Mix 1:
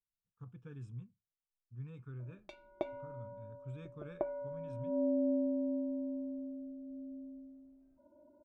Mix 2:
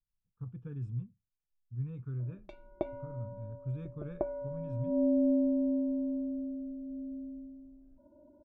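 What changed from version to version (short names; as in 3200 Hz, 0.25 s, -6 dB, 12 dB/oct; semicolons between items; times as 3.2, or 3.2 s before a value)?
master: add tilt -3 dB/oct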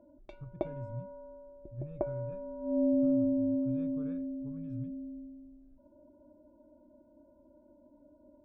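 speech -4.5 dB; background: entry -2.20 s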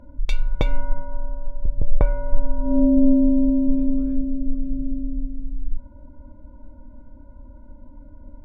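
speech: add tone controls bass -6 dB, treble +7 dB; background: remove double band-pass 470 Hz, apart 0.79 oct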